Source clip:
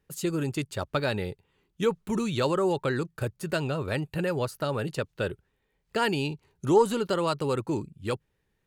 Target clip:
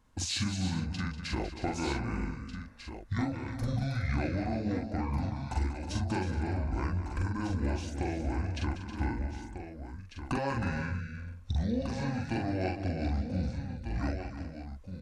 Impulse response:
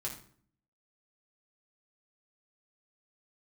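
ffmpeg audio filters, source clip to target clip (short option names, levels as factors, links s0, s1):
-filter_complex "[0:a]asubboost=boost=3:cutoff=150,acompressor=threshold=0.0112:ratio=8,asplit=2[s0][s1];[s1]adelay=25,volume=0.75[s2];[s0][s2]amix=inputs=2:normalize=0,aecho=1:1:111|183|242|892:0.266|0.316|0.141|0.335,asetrate=25442,aresample=44100,volume=2.24"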